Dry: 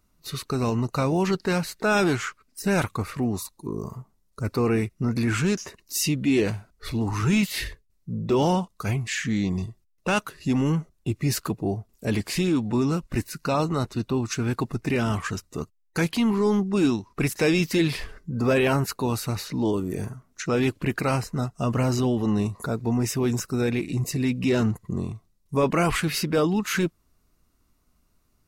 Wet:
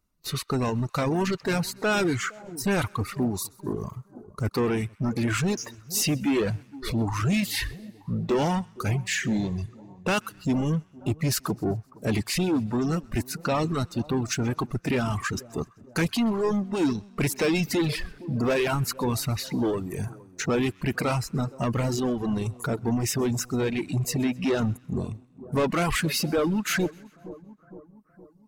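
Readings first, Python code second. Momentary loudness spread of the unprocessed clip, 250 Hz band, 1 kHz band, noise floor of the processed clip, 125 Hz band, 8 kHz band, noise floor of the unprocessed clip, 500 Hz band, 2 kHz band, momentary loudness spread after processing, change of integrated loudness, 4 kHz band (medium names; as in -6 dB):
11 LU, -2.0 dB, -1.5 dB, -56 dBFS, -1.5 dB, +1.0 dB, -67 dBFS, -2.0 dB, -1.0 dB, 8 LU, -1.5 dB, 0.0 dB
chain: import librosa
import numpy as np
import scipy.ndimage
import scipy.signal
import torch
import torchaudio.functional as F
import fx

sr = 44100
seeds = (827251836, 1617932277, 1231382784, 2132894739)

y = fx.leveller(x, sr, passes=2)
y = fx.echo_split(y, sr, split_hz=1100.0, low_ms=464, high_ms=129, feedback_pct=52, wet_db=-14)
y = fx.dereverb_blind(y, sr, rt60_s=1.4)
y = y * 10.0 ** (-4.5 / 20.0)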